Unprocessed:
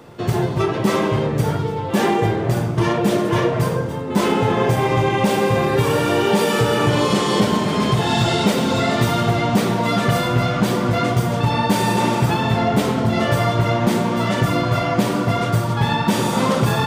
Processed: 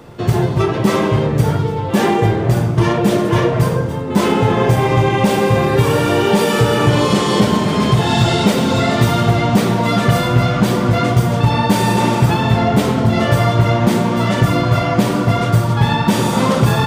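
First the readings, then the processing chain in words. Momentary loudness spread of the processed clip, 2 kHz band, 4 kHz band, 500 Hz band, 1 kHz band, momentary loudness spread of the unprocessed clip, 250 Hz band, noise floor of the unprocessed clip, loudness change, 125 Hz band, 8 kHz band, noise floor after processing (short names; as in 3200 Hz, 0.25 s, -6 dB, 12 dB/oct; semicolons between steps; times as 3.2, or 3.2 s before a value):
2 LU, +2.5 dB, +2.5 dB, +3.0 dB, +2.5 dB, 3 LU, +4.0 dB, -23 dBFS, +4.0 dB, +5.5 dB, +2.5 dB, -19 dBFS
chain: low shelf 100 Hz +8 dB; gain +2.5 dB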